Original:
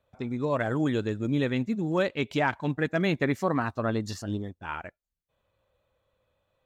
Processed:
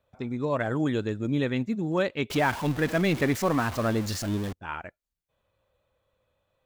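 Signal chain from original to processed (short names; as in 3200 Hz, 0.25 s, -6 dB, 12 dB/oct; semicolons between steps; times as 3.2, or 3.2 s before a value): 2.3–4.53 zero-crossing step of -31 dBFS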